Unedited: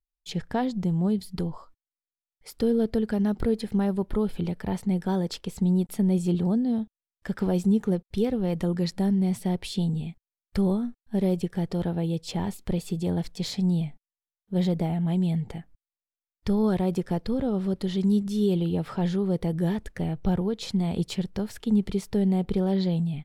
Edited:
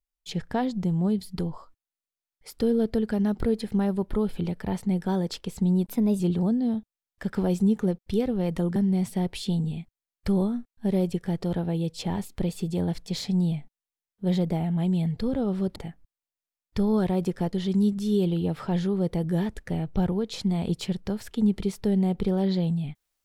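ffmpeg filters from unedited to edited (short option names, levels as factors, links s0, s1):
-filter_complex "[0:a]asplit=7[s0][s1][s2][s3][s4][s5][s6];[s0]atrim=end=5.854[s7];[s1]atrim=start=5.85:end=6.24,asetpts=PTS-STARTPTS,asetrate=49392,aresample=44100,atrim=end_sample=15356,asetpts=PTS-STARTPTS[s8];[s2]atrim=start=6.236:end=8.802[s9];[s3]atrim=start=9.048:end=15.462[s10];[s4]atrim=start=17.228:end=17.822[s11];[s5]atrim=start=15.458:end=17.232[s12];[s6]atrim=start=17.818[s13];[s7][s8]acrossfade=d=0.004:c1=hsin:c2=hsin[s14];[s14][s9]acrossfade=d=0.004:c1=hsin:c2=hsin[s15];[s15][s10]acrossfade=d=0.004:c1=hsin:c2=hsin[s16];[s16][s11]acrossfade=d=0.004:c1=hsin:c2=hsin[s17];[s17][s12]acrossfade=d=0.004:c1=hsin:c2=hsin[s18];[s18][s13]acrossfade=d=0.004:c1=hsin:c2=hsin"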